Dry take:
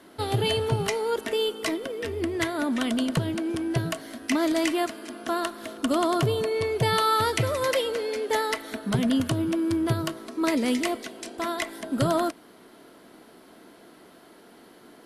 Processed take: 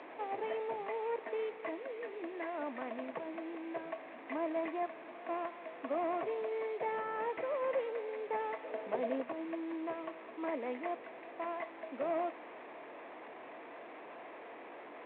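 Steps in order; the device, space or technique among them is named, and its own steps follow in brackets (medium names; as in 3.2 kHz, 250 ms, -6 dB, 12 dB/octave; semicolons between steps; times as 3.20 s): local Wiener filter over 15 samples; digital answering machine (band-pass 380–3200 Hz; one-bit delta coder 16 kbps, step -35.5 dBFS; cabinet simulation 370–4100 Hz, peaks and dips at 390 Hz -5 dB, 1.4 kHz -10 dB, 3 kHz -9 dB); 8.63–9.23 s: graphic EQ 500/4000/8000 Hz +9/+5/-11 dB; trim -4.5 dB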